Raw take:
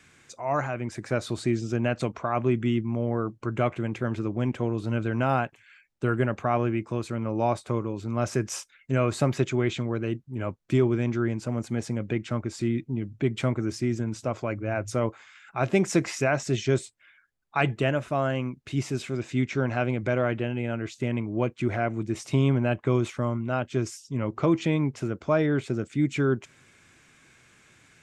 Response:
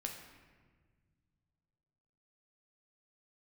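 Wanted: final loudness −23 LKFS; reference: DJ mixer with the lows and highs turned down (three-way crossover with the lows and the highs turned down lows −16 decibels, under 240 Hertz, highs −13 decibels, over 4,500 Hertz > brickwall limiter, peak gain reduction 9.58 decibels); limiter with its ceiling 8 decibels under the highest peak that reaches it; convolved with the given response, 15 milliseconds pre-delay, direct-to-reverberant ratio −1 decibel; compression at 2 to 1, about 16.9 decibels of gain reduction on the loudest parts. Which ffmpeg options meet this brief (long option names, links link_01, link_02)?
-filter_complex "[0:a]acompressor=threshold=-50dB:ratio=2,alimiter=level_in=8.5dB:limit=-24dB:level=0:latency=1,volume=-8.5dB,asplit=2[link_01][link_02];[1:a]atrim=start_sample=2205,adelay=15[link_03];[link_02][link_03]afir=irnorm=-1:irlink=0,volume=2dB[link_04];[link_01][link_04]amix=inputs=2:normalize=0,acrossover=split=240 4500:gain=0.158 1 0.224[link_05][link_06][link_07];[link_05][link_06][link_07]amix=inputs=3:normalize=0,volume=24dB,alimiter=limit=-13dB:level=0:latency=1"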